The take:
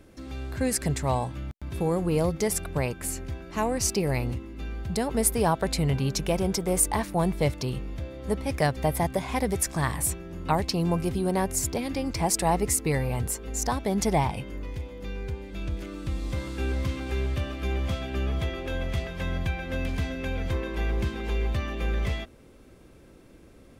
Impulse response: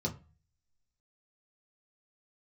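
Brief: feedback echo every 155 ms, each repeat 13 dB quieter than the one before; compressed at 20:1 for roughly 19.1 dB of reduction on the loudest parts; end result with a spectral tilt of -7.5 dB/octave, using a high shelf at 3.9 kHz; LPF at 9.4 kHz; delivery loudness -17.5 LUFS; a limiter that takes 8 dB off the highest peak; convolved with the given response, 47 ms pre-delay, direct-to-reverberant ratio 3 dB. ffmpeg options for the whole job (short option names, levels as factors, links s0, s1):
-filter_complex "[0:a]lowpass=9400,highshelf=f=3900:g=-8.5,acompressor=threshold=0.0112:ratio=20,alimiter=level_in=3.98:limit=0.0631:level=0:latency=1,volume=0.251,aecho=1:1:155|310|465:0.224|0.0493|0.0108,asplit=2[s0][s1];[1:a]atrim=start_sample=2205,adelay=47[s2];[s1][s2]afir=irnorm=-1:irlink=0,volume=0.473[s3];[s0][s3]amix=inputs=2:normalize=0,volume=14.1"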